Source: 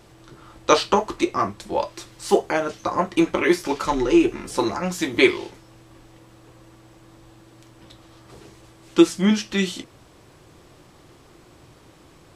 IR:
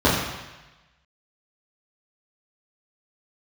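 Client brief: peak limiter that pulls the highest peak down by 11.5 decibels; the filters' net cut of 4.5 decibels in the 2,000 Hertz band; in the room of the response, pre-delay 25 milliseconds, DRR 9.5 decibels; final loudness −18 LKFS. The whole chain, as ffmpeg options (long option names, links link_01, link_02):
-filter_complex "[0:a]equalizer=frequency=2000:width_type=o:gain=-5.5,alimiter=limit=-13dB:level=0:latency=1,asplit=2[link_01][link_02];[1:a]atrim=start_sample=2205,adelay=25[link_03];[link_02][link_03]afir=irnorm=-1:irlink=0,volume=-31dB[link_04];[link_01][link_04]amix=inputs=2:normalize=0,volume=7dB"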